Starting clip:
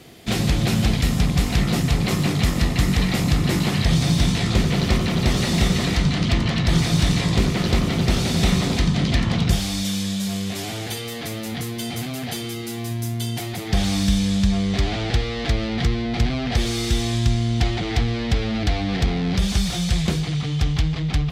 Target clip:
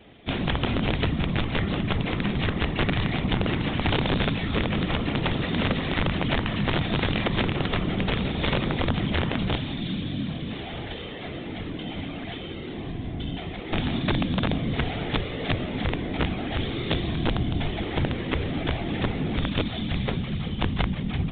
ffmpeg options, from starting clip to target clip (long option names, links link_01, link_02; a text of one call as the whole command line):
ffmpeg -i in.wav -af "afftfilt=real='hypot(re,im)*cos(2*PI*random(0))':imag='hypot(re,im)*sin(2*PI*random(1))':win_size=512:overlap=0.75,bandreject=frequency=57.6:width_type=h:width=4,bandreject=frequency=115.2:width_type=h:width=4,bandreject=frequency=172.8:width_type=h:width=4,bandreject=frequency=230.4:width_type=h:width=4,aresample=16000,aeval=exprs='(mod(7.5*val(0)+1,2)-1)/7.5':channel_layout=same,aresample=44100,aresample=8000,aresample=44100,volume=1.5dB" out.wav